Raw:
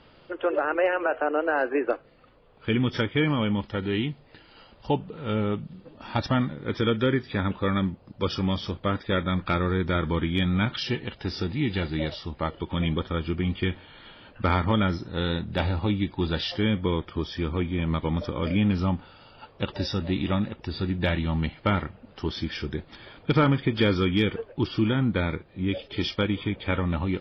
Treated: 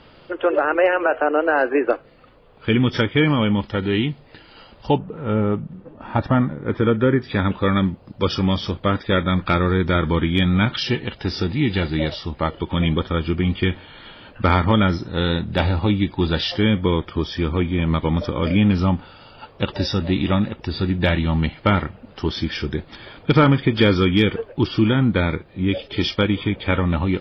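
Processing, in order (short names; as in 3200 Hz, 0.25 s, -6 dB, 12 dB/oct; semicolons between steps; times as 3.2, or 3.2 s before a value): 4.98–7.22 LPF 1700 Hz 12 dB/oct; gain +6.5 dB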